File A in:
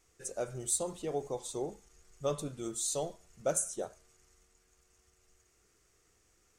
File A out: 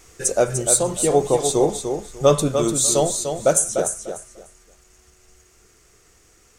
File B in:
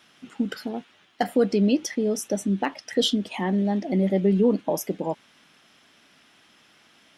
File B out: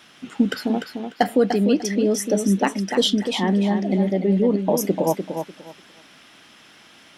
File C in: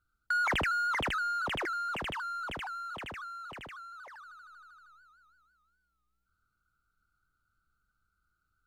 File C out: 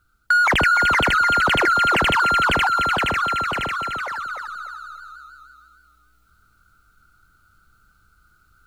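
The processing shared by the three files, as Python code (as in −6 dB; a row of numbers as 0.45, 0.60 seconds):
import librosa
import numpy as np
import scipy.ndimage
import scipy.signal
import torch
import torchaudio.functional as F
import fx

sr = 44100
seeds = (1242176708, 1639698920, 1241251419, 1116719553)

y = fx.rider(x, sr, range_db=4, speed_s=0.5)
y = fx.echo_feedback(y, sr, ms=297, feedback_pct=21, wet_db=-7.0)
y = y * 10.0 ** (-22 / 20.0) / np.sqrt(np.mean(np.square(y)))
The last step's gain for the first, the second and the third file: +16.5, +3.0, +15.5 decibels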